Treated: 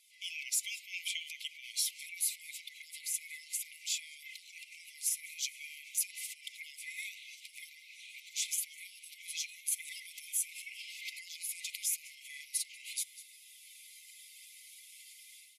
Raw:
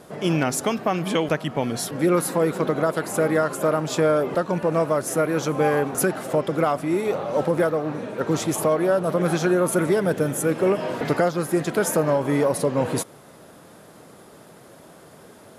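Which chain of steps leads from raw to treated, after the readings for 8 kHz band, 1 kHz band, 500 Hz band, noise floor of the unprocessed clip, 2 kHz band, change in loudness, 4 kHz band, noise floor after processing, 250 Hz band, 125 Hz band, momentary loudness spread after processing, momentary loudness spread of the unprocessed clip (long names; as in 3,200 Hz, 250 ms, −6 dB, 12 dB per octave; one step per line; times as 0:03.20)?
−3.5 dB, below −40 dB, below −40 dB, −48 dBFS, −13.0 dB, −15.0 dB, −4.0 dB, −57 dBFS, below −40 dB, below −40 dB, 17 LU, 4 LU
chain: spectral magnitudes quantised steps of 15 dB
automatic gain control gain up to 11.5 dB
single-tap delay 197 ms −22 dB
brickwall limiter −12.5 dBFS, peak gain reduction 10.5 dB
linear-phase brick-wall high-pass 2,000 Hz
level −7.5 dB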